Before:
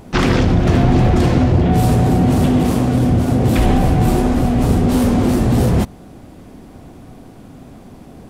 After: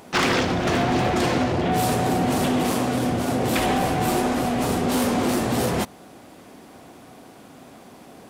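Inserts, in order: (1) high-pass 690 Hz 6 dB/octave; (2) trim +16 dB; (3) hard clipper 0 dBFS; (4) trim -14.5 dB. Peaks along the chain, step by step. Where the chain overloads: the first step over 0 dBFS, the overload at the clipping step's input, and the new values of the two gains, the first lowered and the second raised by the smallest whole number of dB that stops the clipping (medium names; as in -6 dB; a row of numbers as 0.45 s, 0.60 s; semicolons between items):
-6.5 dBFS, +9.5 dBFS, 0.0 dBFS, -14.5 dBFS; step 2, 9.5 dB; step 2 +6 dB, step 4 -4.5 dB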